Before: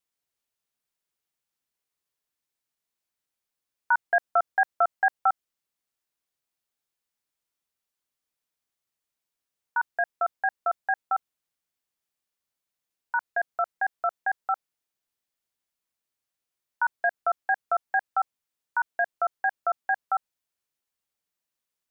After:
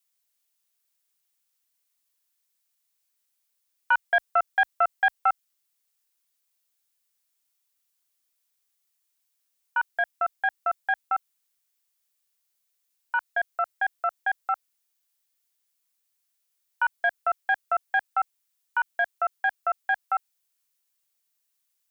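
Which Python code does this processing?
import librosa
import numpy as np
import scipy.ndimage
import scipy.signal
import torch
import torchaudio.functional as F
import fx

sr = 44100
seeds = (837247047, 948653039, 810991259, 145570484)

y = fx.tracing_dist(x, sr, depth_ms=0.02)
y = fx.tilt_eq(y, sr, slope=3.0)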